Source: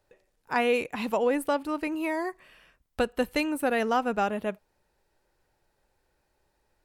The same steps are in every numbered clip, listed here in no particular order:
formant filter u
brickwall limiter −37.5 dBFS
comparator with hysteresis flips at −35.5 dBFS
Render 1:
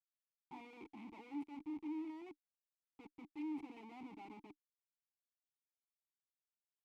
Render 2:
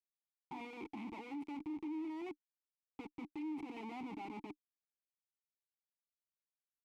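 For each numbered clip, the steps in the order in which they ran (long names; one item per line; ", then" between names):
comparator with hysteresis, then brickwall limiter, then formant filter
comparator with hysteresis, then formant filter, then brickwall limiter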